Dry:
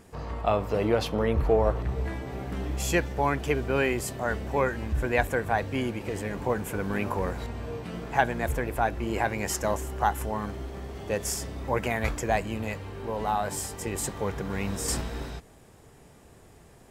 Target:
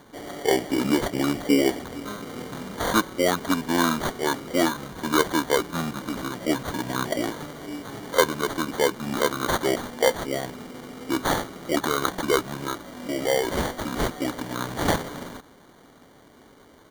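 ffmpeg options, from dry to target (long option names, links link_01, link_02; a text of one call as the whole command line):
ffmpeg -i in.wav -af "highpass=350,highshelf=frequency=2600:gain=5.5,asetrate=27781,aresample=44100,atempo=1.5874,acrusher=samples=17:mix=1:aa=0.000001,volume=4.5dB" out.wav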